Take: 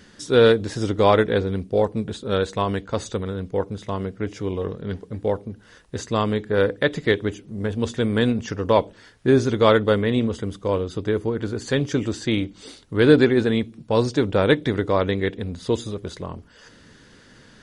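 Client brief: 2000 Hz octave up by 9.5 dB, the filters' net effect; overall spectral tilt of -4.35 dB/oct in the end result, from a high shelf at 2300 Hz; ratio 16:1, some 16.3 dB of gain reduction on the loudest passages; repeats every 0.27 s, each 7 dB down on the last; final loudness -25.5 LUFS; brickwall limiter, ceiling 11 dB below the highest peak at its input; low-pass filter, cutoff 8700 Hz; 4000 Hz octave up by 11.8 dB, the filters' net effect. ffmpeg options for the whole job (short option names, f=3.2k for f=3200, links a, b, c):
-af "lowpass=8.7k,equalizer=f=2k:t=o:g=8.5,highshelf=f=2.3k:g=4,equalizer=f=4k:t=o:g=8,acompressor=threshold=-24dB:ratio=16,alimiter=limit=-18.5dB:level=0:latency=1,aecho=1:1:270|540|810|1080|1350:0.447|0.201|0.0905|0.0407|0.0183,volume=5dB"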